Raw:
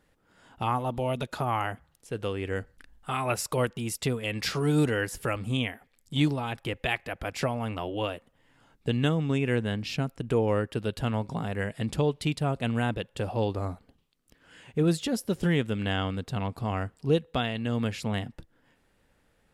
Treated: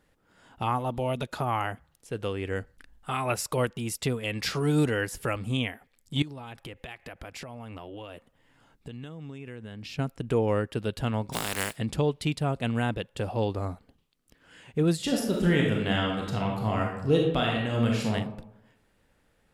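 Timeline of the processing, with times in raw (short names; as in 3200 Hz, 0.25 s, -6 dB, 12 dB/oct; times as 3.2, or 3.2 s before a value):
6.22–9.99 compressor 8:1, threshold -37 dBFS
11.32–11.75 spectral contrast lowered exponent 0.32
14.95–18.12 reverb throw, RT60 0.86 s, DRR -1 dB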